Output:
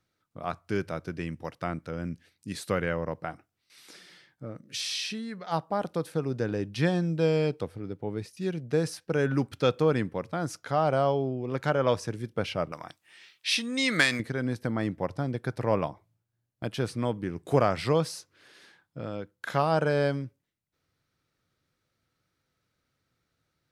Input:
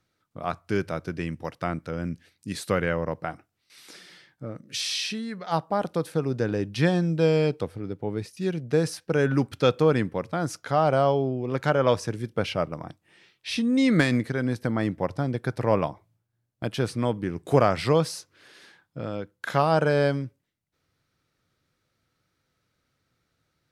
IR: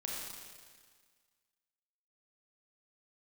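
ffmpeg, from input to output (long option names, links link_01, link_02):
-filter_complex "[0:a]asettb=1/sr,asplit=3[link_01][link_02][link_03];[link_01]atrim=end=12.724[link_04];[link_02]atrim=start=12.72:end=14.2,asetpts=PTS-STARTPTS,afade=type=in:duration=0.004:curve=qsin,afade=type=out:start_time=1.476:duration=0.004:curve=qsin,tiltshelf=frequency=680:gain=-9.5[link_05];[link_03]atrim=start=14.196[link_06];[link_04][link_05]acrossfade=duration=0.004:curve1=hsin:curve2=qsin[link_07];[link_07][link_06]acrossfade=duration=0.004:curve1=qsin:curve2=hsin,volume=-3.5dB"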